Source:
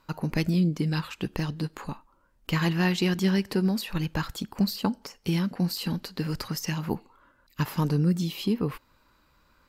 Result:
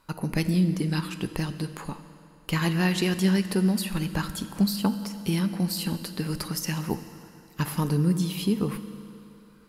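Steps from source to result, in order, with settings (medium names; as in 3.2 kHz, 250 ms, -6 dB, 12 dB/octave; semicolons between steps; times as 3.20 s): peaking EQ 10 kHz +14.5 dB 0.36 oct; on a send: reverberation RT60 3.0 s, pre-delay 5 ms, DRR 10 dB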